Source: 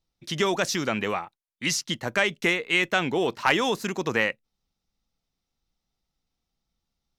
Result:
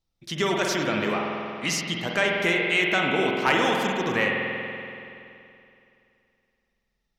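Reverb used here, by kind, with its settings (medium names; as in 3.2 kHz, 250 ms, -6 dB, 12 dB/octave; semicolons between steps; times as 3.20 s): spring tank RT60 2.7 s, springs 47 ms, chirp 65 ms, DRR -0.5 dB; trim -1.5 dB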